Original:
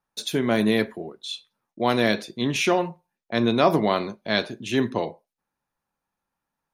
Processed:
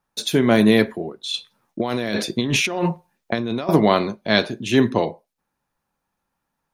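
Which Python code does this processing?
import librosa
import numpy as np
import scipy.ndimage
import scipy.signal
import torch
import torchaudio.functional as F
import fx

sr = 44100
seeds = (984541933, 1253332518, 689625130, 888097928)

y = fx.low_shelf(x, sr, hz=340.0, db=2.5)
y = fx.over_compress(y, sr, threshold_db=-28.0, ratio=-1.0, at=(1.34, 3.69))
y = F.gain(torch.from_numpy(y), 5.0).numpy()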